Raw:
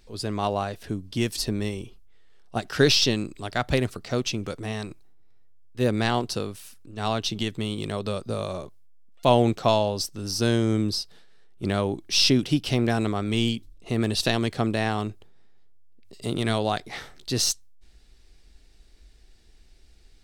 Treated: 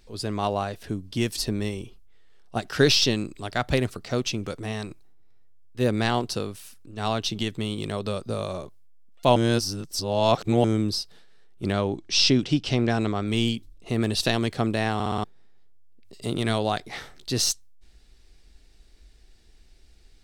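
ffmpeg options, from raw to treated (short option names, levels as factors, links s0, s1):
-filter_complex "[0:a]asettb=1/sr,asplit=3[s0][s1][s2];[s0]atrim=end=11.724[s3];[s1]atrim=start=11.72:end=13.28,asetpts=PTS-STARTPTS,afade=t=in:d=0.004:c=qsin,afade=t=out:st=1.556:d=0.004:c=qsin,lowpass=f=7600:w=0.5412,lowpass=f=7600:w=1.3066[s4];[s2]atrim=start=13.276[s5];[s3][s4]acrossfade=d=0.004:c1=hsin:c2=qsin[s6];[s6][s5]acrossfade=d=0.004:c1=qsin:c2=hsin,asplit=8[s7][s8][s9][s10][s11][s12][s13][s14];[s7]atrim=end=9.362[s15];[s8]atrim=start=9.358:end=10.642,asetpts=PTS-STARTPTS,areverse[s16];[s9]atrim=start=10.638:end=15.002[s17];[s10]atrim=start=14.938:end=15.002[s18];[s11]atrim=start=14.938:end=15.002[s19];[s12]atrim=start=14.938:end=15.002[s20];[s13]atrim=start=14.938:end=15.002[s21];[s14]atrim=start=15.238[s22];[s15][s16]acrossfade=d=0.004:c1=hsin:c2=hsin[s23];[s23][s17]acrossfade=d=0.004:c1=hsin:c2=hsin[s24];[s24][s18]acrossfade=d=0.004:c1=hsin:c2=hsin[s25];[s25][s19]acrossfade=d=0.004:c1=hsin:c2=hsin[s26];[s26][s20]acrossfade=d=0.004:c1=hsin:c2=hsin[s27];[s27][s21]acrossfade=d=0.004:c1=hsin:c2=hsin[s28];[s28][s22]acrossfade=d=0.004:c1=hsin:c2=hsin"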